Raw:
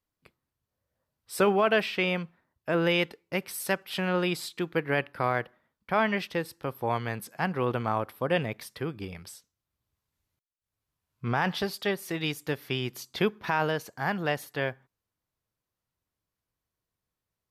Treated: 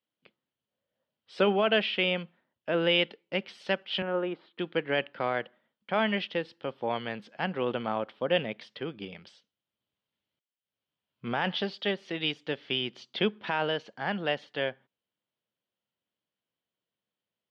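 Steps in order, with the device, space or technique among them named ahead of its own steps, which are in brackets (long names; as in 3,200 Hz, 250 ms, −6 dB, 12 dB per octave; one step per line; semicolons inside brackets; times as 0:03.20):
kitchen radio (loudspeaker in its box 190–4,400 Hz, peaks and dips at 210 Hz +5 dB, 550 Hz +4 dB, 1,100 Hz −4 dB, 3,100 Hz +10 dB)
0:04.02–0:04.59: Chebyshev band-pass filter 250–1,300 Hz, order 2
level −2.5 dB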